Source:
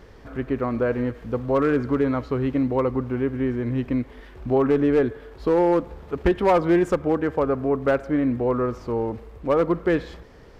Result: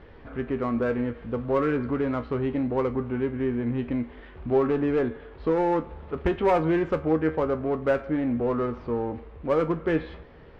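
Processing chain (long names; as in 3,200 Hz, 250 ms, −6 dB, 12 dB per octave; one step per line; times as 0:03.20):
low-pass filter 3,500 Hz 24 dB per octave
in parallel at −4.5 dB: soft clipping −25.5 dBFS, distortion −7 dB
on the sum: tuned comb filter 79 Hz, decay 0.22 s, harmonics all, mix 70%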